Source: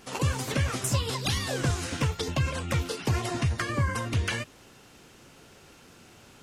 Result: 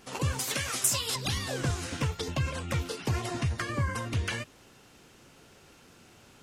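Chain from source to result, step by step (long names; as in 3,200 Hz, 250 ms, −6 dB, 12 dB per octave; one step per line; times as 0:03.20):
0:00.39–0:01.16: spectral tilt +3 dB per octave
level −3 dB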